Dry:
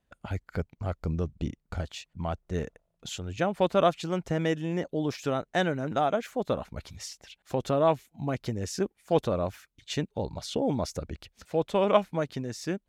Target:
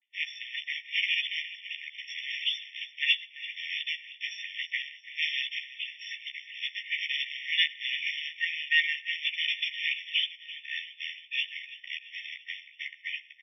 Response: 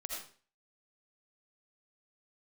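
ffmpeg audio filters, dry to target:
-filter_complex "[0:a]areverse,highpass=130,bandreject=f=3400:w=18,aecho=1:1:323|646|969|1292|1615|1938:0.158|0.0935|0.0552|0.0326|0.0192|0.0113,aresample=11025,acrusher=bits=4:mode=log:mix=0:aa=0.000001,aresample=44100,asplit=2[s0][s1];[s1]adelay=13,volume=0.531[s2];[s0][s2]amix=inputs=2:normalize=0,asplit=2[s3][s4];[1:a]atrim=start_sample=2205[s5];[s4][s5]afir=irnorm=-1:irlink=0,volume=0.0944[s6];[s3][s6]amix=inputs=2:normalize=0,asetrate=42336,aresample=44100,alimiter=level_in=4.73:limit=0.891:release=50:level=0:latency=1,afftfilt=real='re*eq(mod(floor(b*sr/1024/1800),2),1)':imag='im*eq(mod(floor(b*sr/1024/1800),2),1)':win_size=1024:overlap=0.75"

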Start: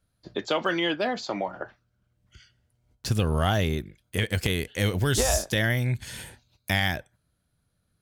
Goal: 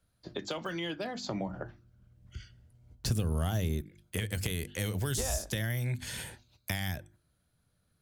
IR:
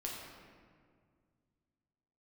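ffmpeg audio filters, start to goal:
-filter_complex "[0:a]bandreject=f=50:t=h:w=6,bandreject=f=100:t=h:w=6,bandreject=f=150:t=h:w=6,bandreject=f=200:t=h:w=6,bandreject=f=250:t=h:w=6,bandreject=f=300:t=h:w=6,bandreject=f=350:t=h:w=6,asettb=1/sr,asplit=3[s0][s1][s2];[s0]atrim=end=1.244[s3];[s1]atrim=start=1.24:end=3.81,asetpts=PTS-STARTPTS,afade=t=in:d=0.004:c=qsin,afade=t=out:st=2.566:d=0.004:c=qsin,lowshelf=f=340:g=12[s4];[s2]atrim=start=3.806[s5];[s3][s4]acrossfade=d=0.004:c1=hsin:c2=qsin[s6];[s6][s5]acrossfade=d=0.004:c1=qsin:c2=hsin,acrossover=split=190|6200[s7][s8][s9];[s7]acompressor=threshold=0.0224:ratio=4[s10];[s8]acompressor=threshold=0.0141:ratio=4[s11];[s9]acompressor=threshold=0.0158:ratio=4[s12];[s10][s11][s12]amix=inputs=3:normalize=0"

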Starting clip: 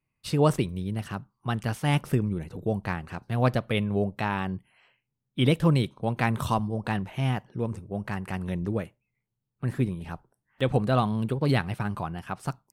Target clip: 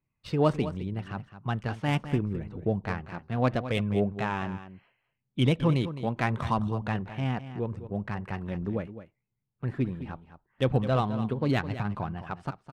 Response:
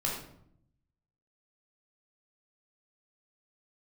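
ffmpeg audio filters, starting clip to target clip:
-af "adynamicsmooth=sensitivity=2.5:basefreq=3100,aphaser=in_gain=1:out_gain=1:delay=4.5:decay=0.25:speed=0.75:type=triangular,aecho=1:1:211:0.237,volume=0.794"

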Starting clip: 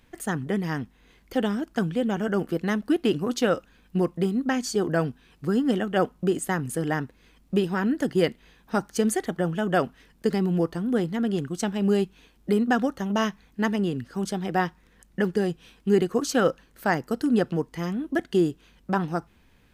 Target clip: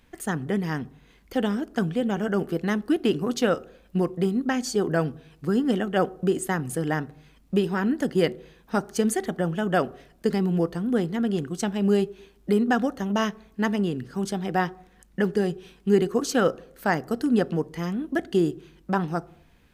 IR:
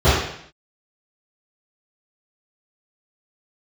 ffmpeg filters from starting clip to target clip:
-filter_complex "[0:a]asplit=2[s0][s1];[1:a]atrim=start_sample=2205,lowpass=1100[s2];[s1][s2]afir=irnorm=-1:irlink=0,volume=0.00631[s3];[s0][s3]amix=inputs=2:normalize=0"

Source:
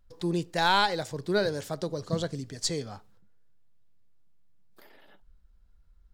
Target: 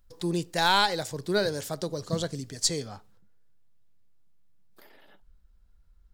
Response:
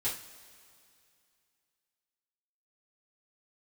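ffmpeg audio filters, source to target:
-af "asetnsamples=n=441:p=0,asendcmd='2.87 highshelf g 2.5',highshelf=f=5500:g=9"

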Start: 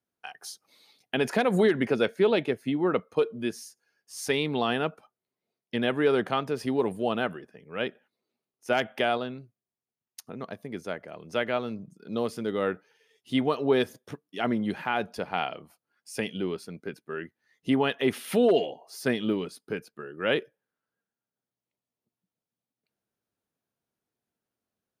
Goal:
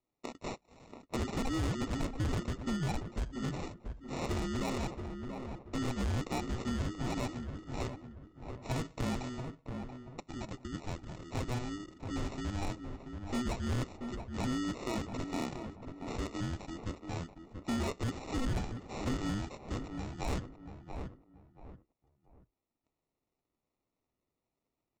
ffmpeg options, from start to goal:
-filter_complex "[0:a]afreqshift=-500,aemphasis=mode=production:type=75fm,aresample=16000,acrusher=samples=10:mix=1:aa=0.000001,aresample=44100,volume=16.8,asoftclip=hard,volume=0.0596,asplit=2[s0][s1];[s1]adelay=682,lowpass=f=1500:p=1,volume=0.355,asplit=2[s2][s3];[s3]adelay=682,lowpass=f=1500:p=1,volume=0.29,asplit=2[s4][s5];[s5]adelay=682,lowpass=f=1500:p=1,volume=0.29[s6];[s0][s2][s4][s6]amix=inputs=4:normalize=0,asplit=2[s7][s8];[s8]acompressor=threshold=0.0141:ratio=6,volume=1.19[s9];[s7][s9]amix=inputs=2:normalize=0,volume=0.398"

